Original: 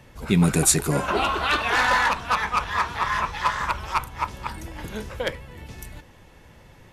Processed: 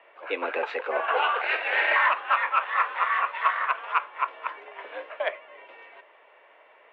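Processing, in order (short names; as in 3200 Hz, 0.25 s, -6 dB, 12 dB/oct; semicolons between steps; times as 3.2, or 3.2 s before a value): 1.41–1.96 minimum comb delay 0.47 ms; mistuned SSB +91 Hz 390–2800 Hz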